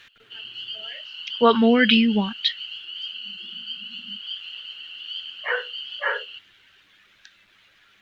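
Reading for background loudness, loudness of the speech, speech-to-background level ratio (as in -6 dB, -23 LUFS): -33.0 LUFS, -21.0 LUFS, 12.0 dB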